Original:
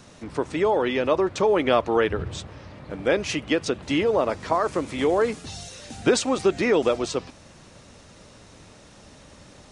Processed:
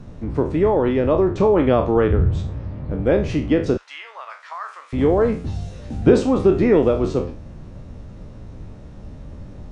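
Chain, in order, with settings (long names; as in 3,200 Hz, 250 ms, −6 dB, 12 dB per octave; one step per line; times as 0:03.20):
peak hold with a decay on every bin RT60 0.37 s
0:03.77–0:04.93: high-pass filter 1,200 Hz 24 dB per octave
spectral tilt −4.5 dB per octave
level −1.5 dB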